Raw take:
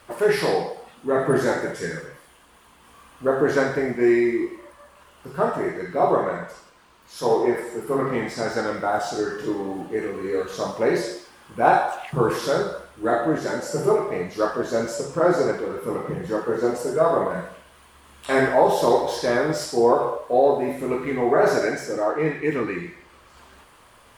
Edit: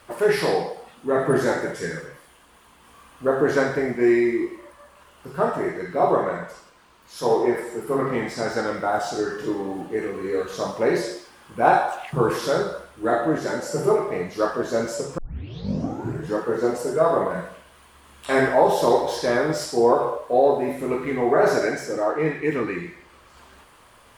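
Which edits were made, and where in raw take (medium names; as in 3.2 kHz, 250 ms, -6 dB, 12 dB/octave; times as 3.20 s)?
15.18 s: tape start 1.18 s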